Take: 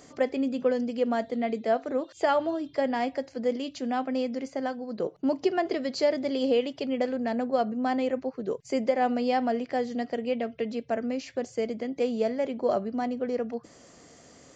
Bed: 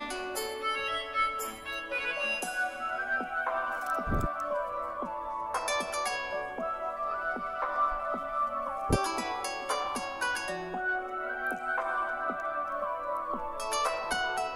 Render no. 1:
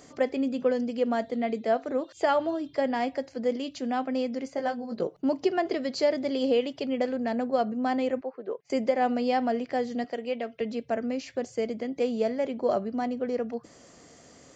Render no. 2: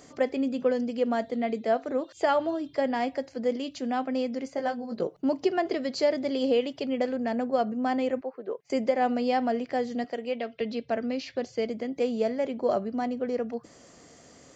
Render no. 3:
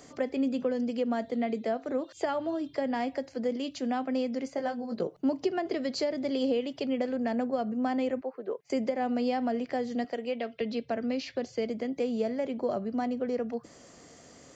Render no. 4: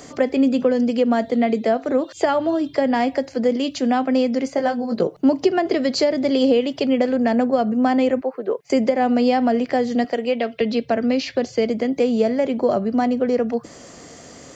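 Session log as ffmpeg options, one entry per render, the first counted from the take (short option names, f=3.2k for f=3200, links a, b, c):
-filter_complex "[0:a]asettb=1/sr,asplit=3[a][b][c];[a]atrim=end=4.564[d];[b]atrim=start=4.56:end=5.04,asetpts=PTS-STARTPTS,afade=t=in:d=0.004:c=qsin,afade=t=out:st=0.476:d=0.004:c=qsin,asplit=2[e][f];[f]adelay=17,volume=-4dB[g];[e][g]amix=inputs=2:normalize=0,atrim=end_sample=21168[h];[c]atrim=start=5.036[i];[d][h]acrossfade=d=0.004:c1=hsin:c2=qsin[j];[j][i]acrossfade=d=0.004:c1=qsin:c2=hsin,asettb=1/sr,asplit=3[k][l][m];[k]atrim=end=8.214[n];[l]atrim=start=8.21:end=8.7,asetpts=PTS-STARTPTS,afade=t=in:d=0.004:c=qsin,afade=t=out:st=0.486:d=0.004:c=qsin,highpass=420,lowpass=2.1k[o];[m]atrim=start=8.696[p];[n][o]acrossfade=d=0.004:c1=hsin:c2=qsin[q];[q][p]acrossfade=d=0.004:c1=qsin:c2=hsin,asettb=1/sr,asplit=3[r][s][t];[r]atrim=end=10.044[u];[s]atrim=start=10.04:end=10.61,asetpts=PTS-STARTPTS,afade=t=in:d=0.004:c=qsin,afade=t=out:st=0.566:d=0.004:c=qsin,highpass=f=380:p=1[v];[t]atrim=start=10.606[w];[u][v]acrossfade=d=0.004:c1=hsin:c2=qsin[x];[x][w]acrossfade=d=0.004:c1=qsin:c2=hsin"
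-filter_complex "[0:a]asettb=1/sr,asplit=3[a][b][c];[a]atrim=end=7.164[d];[b]atrim=start=7.16:end=8.08,asetpts=PTS-STARTPTS,afade=t=in:d=0.004:c=qsin,afade=t=out:st=0.916:d=0.004:c=qsin,bandreject=f=4k:w=12[e];[c]atrim=start=8.076[f];[d][e]acrossfade=d=0.004:c1=hsin:c2=qsin[g];[g][f]acrossfade=d=0.004:c1=qsin:c2=hsin,asettb=1/sr,asplit=3[h][i][j];[h]atrim=end=10.404[k];[i]atrim=start=10.4:end=11.67,asetpts=PTS-STARTPTS,afade=t=in:d=0.004:c=qsin,afade=t=out:st=1.266:d=0.004:c=qsin,lowpass=f=4.4k:t=q:w=1.8[l];[j]atrim=start=11.666[m];[k][l]acrossfade=d=0.004:c1=hsin:c2=qsin[n];[n][m]acrossfade=d=0.004:c1=qsin:c2=hsin"
-filter_complex "[0:a]acrossover=split=290[a][b];[b]acompressor=threshold=-29dB:ratio=4[c];[a][c]amix=inputs=2:normalize=0"
-af "volume=11.5dB"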